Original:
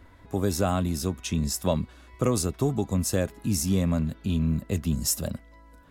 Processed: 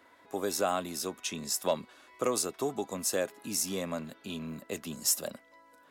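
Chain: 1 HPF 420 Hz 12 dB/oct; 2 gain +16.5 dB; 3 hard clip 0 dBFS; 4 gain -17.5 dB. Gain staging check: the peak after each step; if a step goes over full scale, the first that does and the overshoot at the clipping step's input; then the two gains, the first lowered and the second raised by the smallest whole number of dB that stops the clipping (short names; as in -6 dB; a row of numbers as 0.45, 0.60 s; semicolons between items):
-12.0, +4.5, 0.0, -17.5 dBFS; step 2, 4.5 dB; step 2 +11.5 dB, step 4 -12.5 dB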